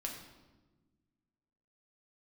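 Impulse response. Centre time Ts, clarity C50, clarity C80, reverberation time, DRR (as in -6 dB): 36 ms, 5.0 dB, 7.0 dB, 1.3 s, 0.0 dB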